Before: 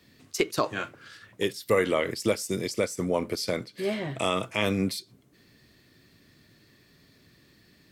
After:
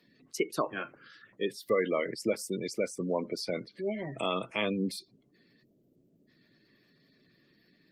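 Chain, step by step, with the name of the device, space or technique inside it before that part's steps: spectral selection erased 5.64–6.27 s, 730–8500 Hz; noise-suppressed video call (high-pass 140 Hz 24 dB/octave; spectral gate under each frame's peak -20 dB strong; trim -4 dB; Opus 32 kbps 48 kHz)

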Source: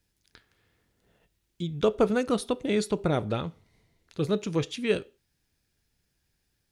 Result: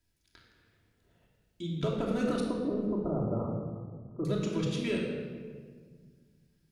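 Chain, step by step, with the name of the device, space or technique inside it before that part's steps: limiter into clipper (peak limiter -18 dBFS, peak gain reduction 7.5 dB; hard clipper -20 dBFS, distortion -25 dB); 2.40–4.25 s: elliptic low-pass 1.2 kHz, stop band 40 dB; simulated room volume 2200 m³, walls mixed, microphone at 2.9 m; trim -6.5 dB

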